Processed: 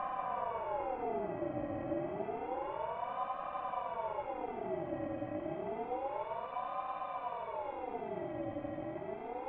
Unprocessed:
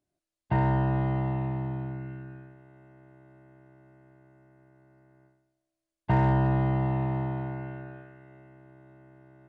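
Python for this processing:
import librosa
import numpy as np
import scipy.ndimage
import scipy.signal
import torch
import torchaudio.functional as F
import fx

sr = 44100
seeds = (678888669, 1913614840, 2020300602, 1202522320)

y = fx.paulstretch(x, sr, seeds[0], factor=49.0, window_s=0.05, from_s=1.97)
y = fx.air_absorb(y, sr, metres=150.0)
y = fx.echo_wet_highpass(y, sr, ms=84, feedback_pct=84, hz=1700.0, wet_db=-8.5)
y = fx.ring_lfo(y, sr, carrier_hz=670.0, swing_pct=35, hz=0.29)
y = y * 10.0 ** (1.5 / 20.0)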